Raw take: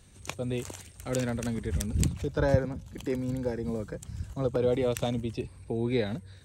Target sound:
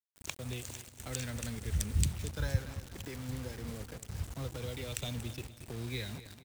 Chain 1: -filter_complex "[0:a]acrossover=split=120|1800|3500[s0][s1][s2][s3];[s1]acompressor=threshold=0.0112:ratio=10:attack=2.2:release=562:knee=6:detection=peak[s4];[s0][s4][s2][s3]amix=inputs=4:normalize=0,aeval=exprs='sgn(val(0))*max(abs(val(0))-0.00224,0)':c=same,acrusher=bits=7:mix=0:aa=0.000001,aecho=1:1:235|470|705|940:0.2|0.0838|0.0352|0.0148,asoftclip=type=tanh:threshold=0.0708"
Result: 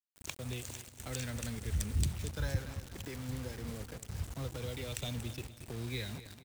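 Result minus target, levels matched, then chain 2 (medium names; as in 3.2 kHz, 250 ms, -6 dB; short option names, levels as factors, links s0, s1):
saturation: distortion +13 dB
-filter_complex "[0:a]acrossover=split=120|1800|3500[s0][s1][s2][s3];[s1]acompressor=threshold=0.0112:ratio=10:attack=2.2:release=562:knee=6:detection=peak[s4];[s0][s4][s2][s3]amix=inputs=4:normalize=0,aeval=exprs='sgn(val(0))*max(abs(val(0))-0.00224,0)':c=same,acrusher=bits=7:mix=0:aa=0.000001,aecho=1:1:235|470|705|940:0.2|0.0838|0.0352|0.0148,asoftclip=type=tanh:threshold=0.224"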